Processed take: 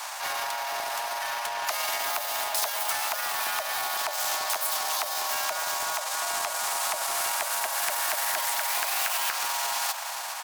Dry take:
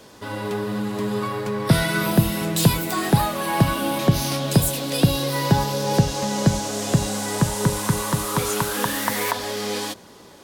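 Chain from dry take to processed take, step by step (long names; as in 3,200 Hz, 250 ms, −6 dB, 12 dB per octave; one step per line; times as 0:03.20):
high-pass filter 180 Hz 12 dB per octave
parametric band 380 Hz +9 dB 1.6 octaves
downward compressor 16 to 1, threshold −24 dBFS, peak gain reduction 17 dB
pitch-shifted copies added −4 semitones −9 dB
frequency shifter +380 Hz
echo machine with several playback heads 135 ms, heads second and third, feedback 54%, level −17.5 dB
pitch shifter +3 semitones
transient designer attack −6 dB, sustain −2 dB
every bin compressed towards the loudest bin 2 to 1
level +3.5 dB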